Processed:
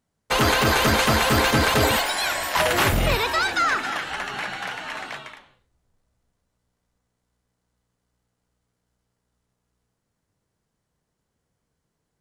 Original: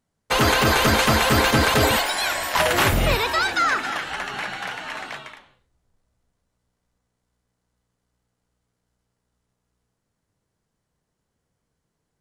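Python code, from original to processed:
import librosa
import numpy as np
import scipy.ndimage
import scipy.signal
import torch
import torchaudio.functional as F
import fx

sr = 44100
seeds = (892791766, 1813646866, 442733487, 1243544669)

y = fx.diode_clip(x, sr, knee_db=-10.5)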